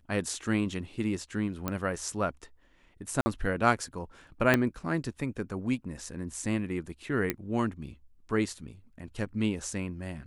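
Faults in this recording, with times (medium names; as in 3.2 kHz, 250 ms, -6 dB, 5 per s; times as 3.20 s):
1.68 s: pop -15 dBFS
3.21–3.26 s: dropout 50 ms
4.54 s: pop -9 dBFS
7.30 s: pop -13 dBFS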